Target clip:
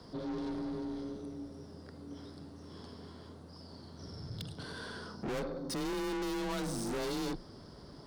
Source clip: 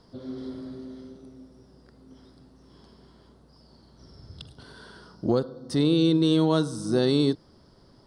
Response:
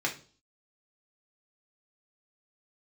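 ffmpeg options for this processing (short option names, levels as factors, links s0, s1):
-af "aeval=exprs='(tanh(100*val(0)+0.2)-tanh(0.2))/100':c=same,afreqshift=24,volume=1.78"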